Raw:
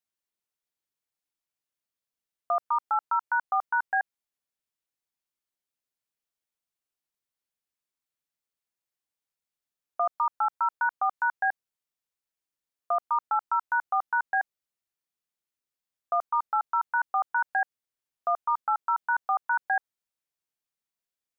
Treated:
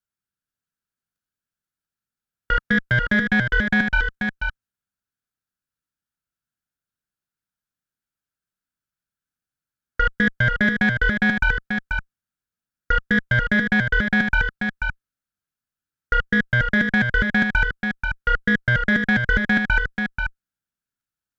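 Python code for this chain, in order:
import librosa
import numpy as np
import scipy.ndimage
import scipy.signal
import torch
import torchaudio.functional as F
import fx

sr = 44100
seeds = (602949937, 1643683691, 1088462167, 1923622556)

y = fx.band_shelf(x, sr, hz=720.0, db=13.0, octaves=1.1)
y = fx.level_steps(y, sr, step_db=11)
y = y * np.sin(2.0 * np.pi * 730.0 * np.arange(len(y)) / sr)
y = fx.cheby_harmonics(y, sr, harmonics=(2, 5, 6), levels_db=(-11, -24, -35), full_scale_db=-14.5)
y = y + 10.0 ** (-5.5 / 20.0) * np.pad(y, (int(486 * sr / 1000.0), 0))[:len(y)]
y = y * librosa.db_to_amplitude(7.0)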